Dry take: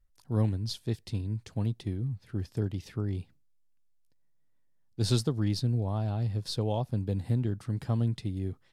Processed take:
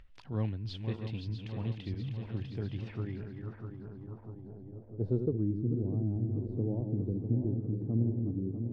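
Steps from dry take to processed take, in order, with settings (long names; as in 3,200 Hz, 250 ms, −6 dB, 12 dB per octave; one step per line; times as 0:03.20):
feedback delay that plays each chunk backwards 324 ms, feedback 80%, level −7 dB
low-pass filter sweep 2,800 Hz → 330 Hz, 0:02.77–0:05.64
upward compression, threshold −35 dBFS
level −6 dB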